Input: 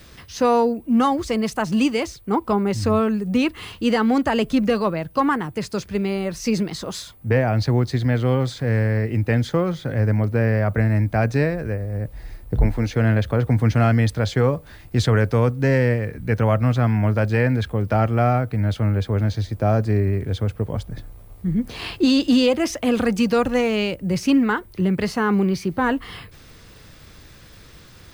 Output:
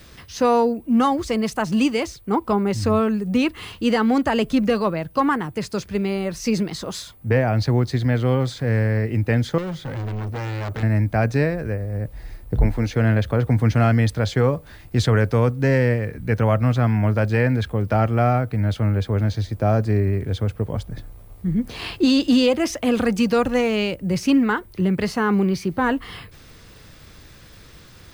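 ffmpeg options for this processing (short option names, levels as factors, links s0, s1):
-filter_complex "[0:a]asettb=1/sr,asplit=3[s0][s1][s2];[s0]atrim=end=9.584[s3];[s1]atrim=start=9.58:end=10.83,asetpts=PTS-STARTPTS,afade=t=in:d=0.004:c=qsin,afade=t=out:st=1.246:d=0.004:c=qsin,asoftclip=type=hard:threshold=0.0531[s4];[s2]atrim=start=10.826[s5];[s3][s4]acrossfade=d=0.004:c1=hsin:c2=qsin[s6];[s6][s5]acrossfade=d=0.004:c1=qsin:c2=hsin"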